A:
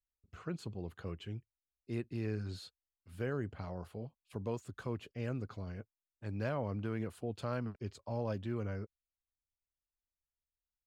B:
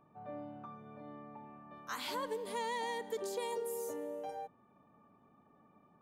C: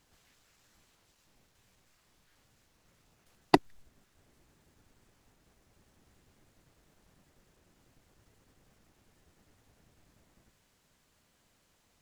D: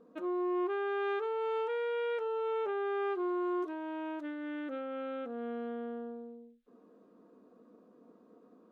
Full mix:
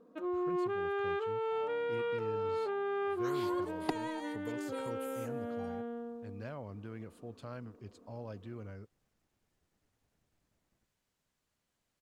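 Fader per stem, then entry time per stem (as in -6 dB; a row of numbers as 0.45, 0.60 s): -7.5, -7.0, -13.0, -1.0 dB; 0.00, 1.35, 0.35, 0.00 s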